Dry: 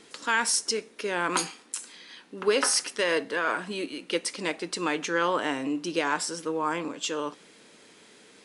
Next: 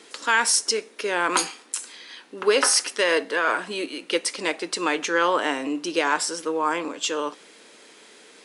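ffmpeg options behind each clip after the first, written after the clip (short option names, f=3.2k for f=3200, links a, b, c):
-af "highpass=300,volume=5dB"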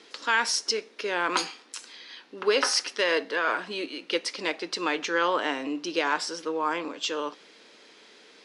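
-af "highshelf=f=6.7k:t=q:w=1.5:g=-9.5,volume=-4dB"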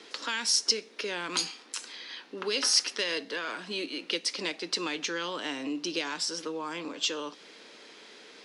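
-filter_complex "[0:a]acrossover=split=240|3000[a][b][c];[b]acompressor=threshold=-38dB:ratio=6[d];[a][d][c]amix=inputs=3:normalize=0,volume=2.5dB"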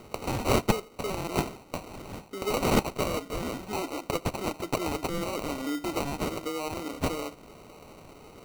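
-af "acrusher=samples=26:mix=1:aa=0.000001,volume=2dB"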